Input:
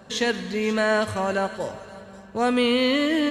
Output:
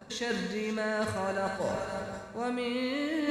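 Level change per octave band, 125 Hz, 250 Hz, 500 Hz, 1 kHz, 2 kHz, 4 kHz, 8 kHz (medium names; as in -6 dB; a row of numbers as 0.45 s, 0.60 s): -4.5 dB, -9.0 dB, -8.5 dB, -8.0 dB, -8.5 dB, -11.5 dB, -7.0 dB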